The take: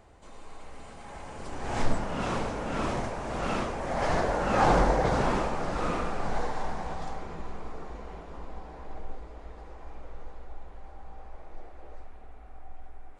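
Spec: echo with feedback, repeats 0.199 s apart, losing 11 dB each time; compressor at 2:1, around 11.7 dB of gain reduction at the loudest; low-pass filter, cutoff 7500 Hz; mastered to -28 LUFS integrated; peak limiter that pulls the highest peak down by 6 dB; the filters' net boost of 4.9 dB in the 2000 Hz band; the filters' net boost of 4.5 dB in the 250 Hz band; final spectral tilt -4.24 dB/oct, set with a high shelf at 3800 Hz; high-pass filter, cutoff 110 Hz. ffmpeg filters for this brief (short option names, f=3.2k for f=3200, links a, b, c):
-af "highpass=110,lowpass=7.5k,equalizer=f=250:t=o:g=6,equalizer=f=2k:t=o:g=5.5,highshelf=f=3.8k:g=3.5,acompressor=threshold=-39dB:ratio=2,alimiter=level_in=3dB:limit=-24dB:level=0:latency=1,volume=-3dB,aecho=1:1:199|398|597:0.282|0.0789|0.0221,volume=10.5dB"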